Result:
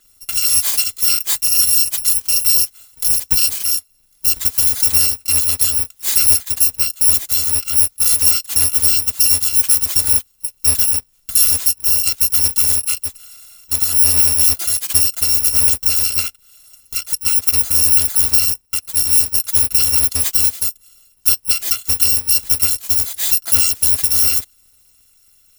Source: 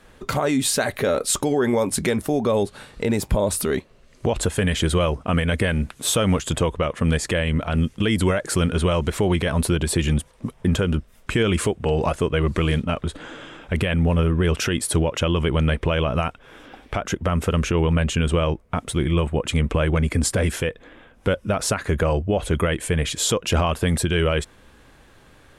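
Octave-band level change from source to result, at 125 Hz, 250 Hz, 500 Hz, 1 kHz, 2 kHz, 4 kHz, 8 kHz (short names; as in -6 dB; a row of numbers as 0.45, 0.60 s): -12.0, -17.5, -20.0, -10.0, -3.0, +9.0, +15.0 dB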